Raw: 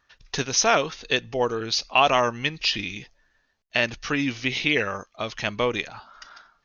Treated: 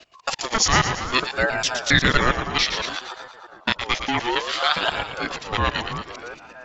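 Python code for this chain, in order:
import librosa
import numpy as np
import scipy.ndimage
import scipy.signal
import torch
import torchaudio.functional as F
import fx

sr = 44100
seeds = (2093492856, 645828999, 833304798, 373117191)

y = fx.local_reverse(x, sr, ms=136.0)
y = fx.echo_split(y, sr, split_hz=660.0, low_ms=323, high_ms=115, feedback_pct=52, wet_db=-8.0)
y = fx.ring_lfo(y, sr, carrier_hz=840.0, swing_pct=35, hz=0.61)
y = F.gain(torch.from_numpy(y), 4.5).numpy()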